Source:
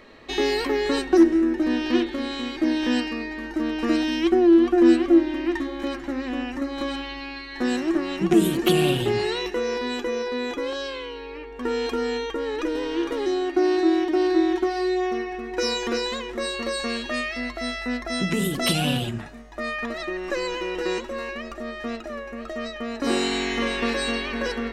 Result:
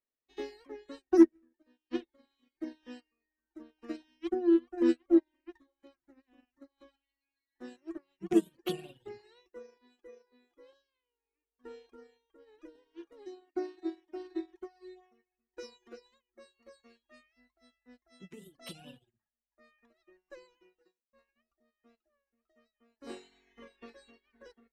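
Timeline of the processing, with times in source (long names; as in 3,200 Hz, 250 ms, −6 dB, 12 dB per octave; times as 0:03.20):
0:01.26–0:01.91: fade out, to −8.5 dB
0:20.67–0:21.13: fade out
whole clip: dynamic equaliser 480 Hz, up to +4 dB, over −32 dBFS, Q 1.2; reverb reduction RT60 1.6 s; expander for the loud parts 2.5 to 1, over −39 dBFS; level −4.5 dB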